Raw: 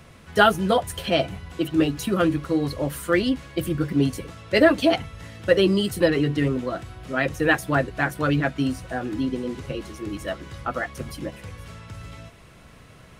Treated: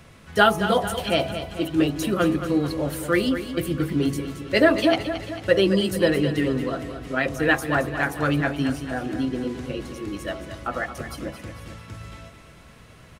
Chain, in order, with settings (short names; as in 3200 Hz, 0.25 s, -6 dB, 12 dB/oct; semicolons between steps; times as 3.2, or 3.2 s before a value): de-hum 46.86 Hz, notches 28; on a send: feedback echo 0.222 s, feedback 54%, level -10.5 dB